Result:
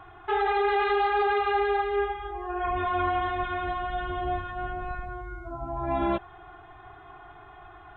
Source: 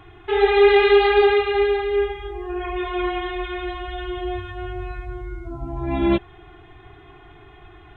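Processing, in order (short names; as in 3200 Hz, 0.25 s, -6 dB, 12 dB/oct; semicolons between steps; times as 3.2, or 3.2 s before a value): 2.63–5.1 octaver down 2 oct, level -1 dB; band shelf 960 Hz +11 dB; limiter -10 dBFS, peak gain reduction 9.5 dB; gain -7.5 dB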